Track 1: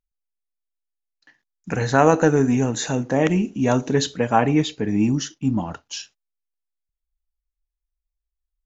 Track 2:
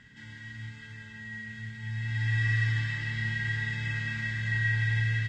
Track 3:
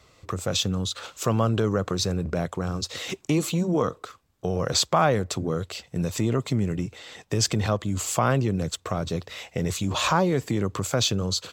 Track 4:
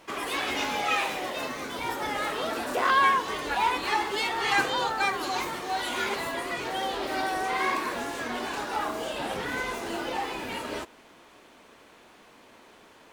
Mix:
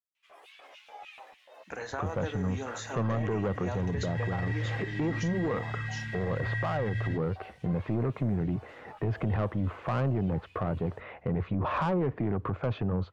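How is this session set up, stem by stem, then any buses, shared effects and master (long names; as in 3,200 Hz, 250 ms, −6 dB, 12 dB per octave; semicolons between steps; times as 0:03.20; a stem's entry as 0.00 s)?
−7.0 dB, 0.00 s, no send, Bessel high-pass filter 640 Hz, order 2; downward compressor, threshold −23 dBFS, peak gain reduction 10 dB
−2.0 dB, 1.90 s, no send, no processing
+2.0 dB, 1.70 s, no send, low-pass filter 2,000 Hz 24 dB per octave; soft clipping −22 dBFS, distortion −10 dB
−19.0 dB, 0.15 s, no send, auto-filter high-pass square 3.4 Hz 610–2,700 Hz; string-ensemble chorus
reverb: not used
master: high-shelf EQ 2,300 Hz −8.5 dB; brickwall limiter −23 dBFS, peak gain reduction 8.5 dB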